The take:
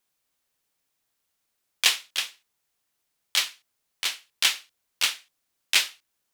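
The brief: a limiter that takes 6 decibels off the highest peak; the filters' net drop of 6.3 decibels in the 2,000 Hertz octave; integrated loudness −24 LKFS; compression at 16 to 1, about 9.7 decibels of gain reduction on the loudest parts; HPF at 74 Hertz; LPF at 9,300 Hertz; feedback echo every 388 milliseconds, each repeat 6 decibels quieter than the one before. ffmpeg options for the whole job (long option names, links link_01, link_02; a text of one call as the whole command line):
ffmpeg -i in.wav -af "highpass=74,lowpass=9300,equalizer=frequency=2000:width_type=o:gain=-8.5,acompressor=threshold=-28dB:ratio=16,alimiter=limit=-18dB:level=0:latency=1,aecho=1:1:388|776|1164|1552|1940|2328:0.501|0.251|0.125|0.0626|0.0313|0.0157,volume=13.5dB" out.wav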